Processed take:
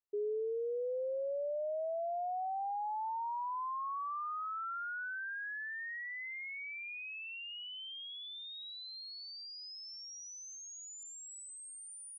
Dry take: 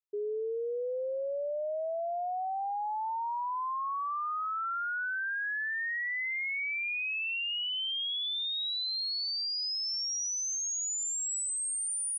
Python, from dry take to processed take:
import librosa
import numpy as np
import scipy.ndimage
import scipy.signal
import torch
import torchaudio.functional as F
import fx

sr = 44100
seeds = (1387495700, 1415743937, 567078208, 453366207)

y = fx.rider(x, sr, range_db=10, speed_s=0.5)
y = fx.high_shelf(y, sr, hz=2500.0, db=-10.0)
y = y * librosa.db_to_amplitude(-5.0)